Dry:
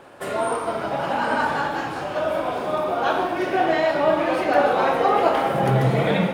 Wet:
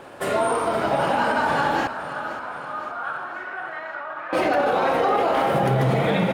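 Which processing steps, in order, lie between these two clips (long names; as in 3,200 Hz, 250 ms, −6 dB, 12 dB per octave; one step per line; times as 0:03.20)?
brickwall limiter −16.5 dBFS, peak gain reduction 10.5 dB
0:01.87–0:04.33: resonant band-pass 1,400 Hz, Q 4.1
repeating echo 522 ms, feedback 57%, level −13 dB
level +4 dB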